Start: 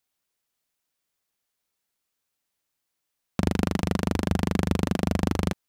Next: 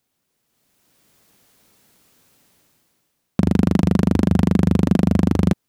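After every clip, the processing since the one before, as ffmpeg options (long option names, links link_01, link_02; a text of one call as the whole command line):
ffmpeg -i in.wav -af "equalizer=frequency=180:width=0.39:gain=11.5,dynaudnorm=framelen=240:gausssize=7:maxgain=16.5dB,alimiter=level_in=9.5dB:limit=-1dB:release=50:level=0:latency=1,volume=-4dB" out.wav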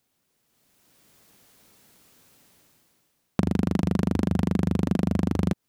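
ffmpeg -i in.wav -af "acompressor=threshold=-19dB:ratio=5" out.wav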